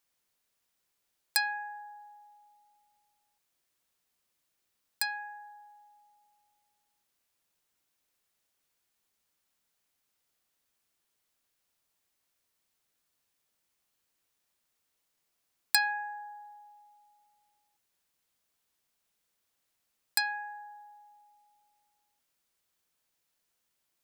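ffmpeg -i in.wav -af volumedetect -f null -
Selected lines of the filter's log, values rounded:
mean_volume: -43.6 dB
max_volume: -5.8 dB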